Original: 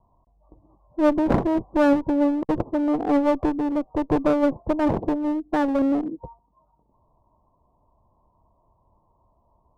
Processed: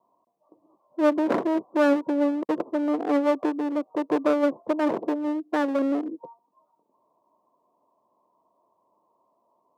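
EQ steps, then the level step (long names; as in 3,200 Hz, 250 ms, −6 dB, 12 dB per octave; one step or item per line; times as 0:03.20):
four-pole ladder high-pass 210 Hz, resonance 20%
low-shelf EQ 420 Hz −6.5 dB
parametric band 810 Hz −6.5 dB 0.26 octaves
+6.0 dB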